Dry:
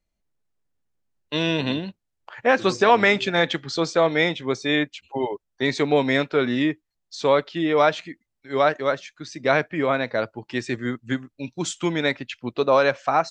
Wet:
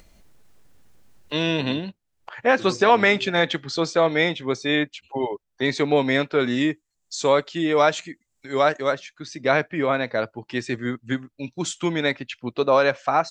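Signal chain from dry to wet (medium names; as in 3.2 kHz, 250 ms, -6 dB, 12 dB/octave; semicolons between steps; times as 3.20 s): 6.40–8.94 s: peaking EQ 7.3 kHz +14 dB 0.58 oct; upward compressor, threshold -33 dBFS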